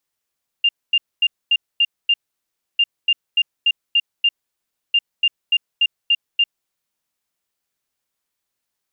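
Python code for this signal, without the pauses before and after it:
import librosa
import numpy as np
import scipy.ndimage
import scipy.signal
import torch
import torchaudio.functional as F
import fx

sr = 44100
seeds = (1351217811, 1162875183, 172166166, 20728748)

y = fx.beep_pattern(sr, wave='sine', hz=2800.0, on_s=0.05, off_s=0.24, beeps=6, pause_s=0.65, groups=3, level_db=-11.5)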